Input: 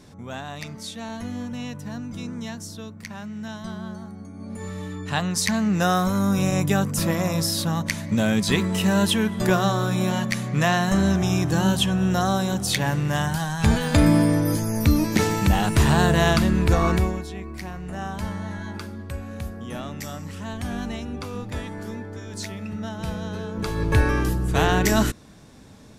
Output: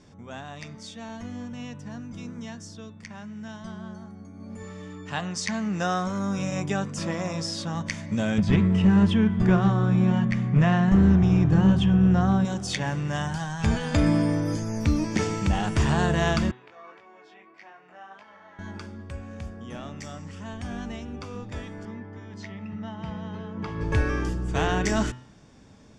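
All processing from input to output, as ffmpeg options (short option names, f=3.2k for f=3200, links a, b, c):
-filter_complex "[0:a]asettb=1/sr,asplit=3[a][b][c];[a]atrim=end=4.634[d];[b]atrim=start=4.63:end=7.75,asetpts=PTS-STARTPTS,afade=t=in:d=0.004:c=qsin,afade=t=out:st=3.116:d=0.004:c=qsin,lowpass=9.2k,lowshelf=f=94:g=-10.5[e];[c]atrim=start=7.746[f];[d][e]acrossfade=d=0.004:c1=hsin:c2=qsin[g];[g][f]acrossfade=d=0.004:c1=qsin:c2=hsin,asettb=1/sr,asplit=3[h][i][j];[h]atrim=end=8.384[k];[i]atrim=start=8.38:end=12.45,asetpts=PTS-STARTPTS,afade=t=in:d=0.004:c=qsin,afade=t=out:st=4.066:d=0.004:c=qsin,bass=f=250:g=11,treble=f=4k:g=-14,bandreject=f=590:w=17,aeval=exprs='clip(val(0),-1,0.316)':c=same[l];[j]atrim=start=12.446[m];[k][l]acrossfade=d=0.004:c1=hsin:c2=qsin[n];[n][m]acrossfade=d=0.004:c1=qsin:c2=hsin,asettb=1/sr,asplit=3[o][p][q];[o]atrim=end=16.514[r];[p]atrim=start=16.51:end=18.59,asetpts=PTS-STARTPTS,afade=t=in:d=0.004:c=qsin,afade=t=out:st=2.076:d=0.004:c=qsin,acompressor=threshold=-28dB:ratio=16:attack=3.2:release=140:knee=1:detection=peak,flanger=delay=19:depth=3.1:speed=1.7,highpass=610,lowpass=3.1k[s];[q]atrim=start=18.586[t];[r][s]acrossfade=d=0.004:c1=hsin:c2=qsin[u];[u][t]acrossfade=d=0.004:c1=qsin:c2=hsin,asettb=1/sr,asplit=3[v][w][x];[v]atrim=end=21.854[y];[w]atrim=start=21.85:end=23.81,asetpts=PTS-STARTPTS,afade=t=in:d=0.004:c=qsin,afade=t=out:st=1.956:d=0.004:c=qsin,highpass=100,lowpass=3.3k,aecho=1:1:1:0.38,atrim=end_sample=86436[z];[x]atrim=start=23.806[aa];[y][z]acrossfade=d=0.004:c1=hsin:c2=qsin[ab];[ab][aa]acrossfade=d=0.004:c1=qsin:c2=hsin,lowpass=f=7.5k:w=0.5412,lowpass=f=7.5k:w=1.3066,bandreject=f=4k:w=7.9,bandreject=f=125.7:t=h:w=4,bandreject=f=251.4:t=h:w=4,bandreject=f=377.1:t=h:w=4,bandreject=f=502.8:t=h:w=4,bandreject=f=628.5:t=h:w=4,bandreject=f=754.2:t=h:w=4,bandreject=f=879.9:t=h:w=4,bandreject=f=1.0056k:t=h:w=4,bandreject=f=1.1313k:t=h:w=4,bandreject=f=1.257k:t=h:w=4,bandreject=f=1.3827k:t=h:w=4,bandreject=f=1.5084k:t=h:w=4,bandreject=f=1.6341k:t=h:w=4,bandreject=f=1.7598k:t=h:w=4,bandreject=f=1.8855k:t=h:w=4,bandreject=f=2.0112k:t=h:w=4,bandreject=f=2.1369k:t=h:w=4,bandreject=f=2.2626k:t=h:w=4,bandreject=f=2.3883k:t=h:w=4,bandreject=f=2.514k:t=h:w=4,bandreject=f=2.6397k:t=h:w=4,bandreject=f=2.7654k:t=h:w=4,bandreject=f=2.8911k:t=h:w=4,bandreject=f=3.0168k:t=h:w=4,bandreject=f=3.1425k:t=h:w=4,bandreject=f=3.2682k:t=h:w=4,bandreject=f=3.3939k:t=h:w=4,bandreject=f=3.5196k:t=h:w=4,bandreject=f=3.6453k:t=h:w=4,bandreject=f=3.771k:t=h:w=4,bandreject=f=3.8967k:t=h:w=4,volume=-4.5dB"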